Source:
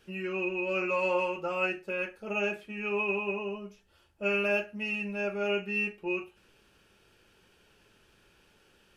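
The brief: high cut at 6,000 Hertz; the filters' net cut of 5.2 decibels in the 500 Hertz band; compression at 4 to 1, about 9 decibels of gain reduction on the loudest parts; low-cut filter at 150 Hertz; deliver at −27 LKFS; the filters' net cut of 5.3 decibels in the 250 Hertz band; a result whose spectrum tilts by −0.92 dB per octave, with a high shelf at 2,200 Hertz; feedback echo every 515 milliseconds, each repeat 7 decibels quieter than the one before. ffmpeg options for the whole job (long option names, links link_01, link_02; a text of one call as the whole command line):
ffmpeg -i in.wav -af "highpass=150,lowpass=6000,equalizer=frequency=250:width_type=o:gain=-5,equalizer=frequency=500:width_type=o:gain=-5.5,highshelf=frequency=2200:gain=8,acompressor=threshold=-34dB:ratio=4,aecho=1:1:515|1030|1545|2060|2575:0.447|0.201|0.0905|0.0407|0.0183,volume=8dB" out.wav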